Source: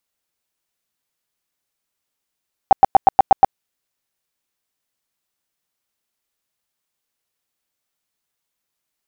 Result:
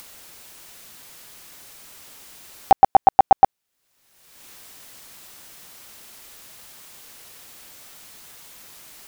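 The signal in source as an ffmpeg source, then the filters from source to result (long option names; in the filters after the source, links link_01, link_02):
-f lavfi -i "aevalsrc='0.668*sin(2*PI*778*mod(t,0.12))*lt(mod(t,0.12),13/778)':duration=0.84:sample_rate=44100"
-af "acompressor=mode=upward:threshold=-18dB:ratio=2.5"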